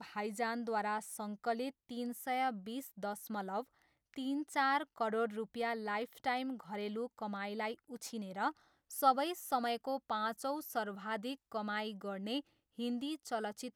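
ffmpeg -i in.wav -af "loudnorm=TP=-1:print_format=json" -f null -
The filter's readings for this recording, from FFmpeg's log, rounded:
"input_i" : "-38.8",
"input_tp" : "-16.2",
"input_lra" : "4.1",
"input_thresh" : "-49.0",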